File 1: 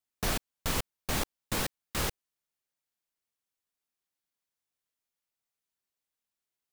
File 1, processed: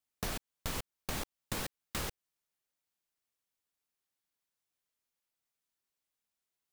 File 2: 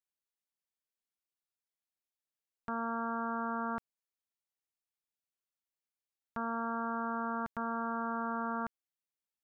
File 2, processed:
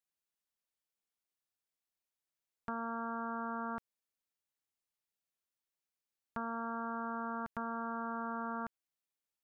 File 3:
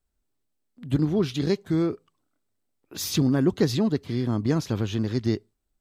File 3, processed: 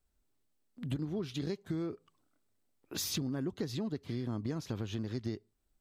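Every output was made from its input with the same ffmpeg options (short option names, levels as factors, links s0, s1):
-af "acompressor=threshold=0.02:ratio=6"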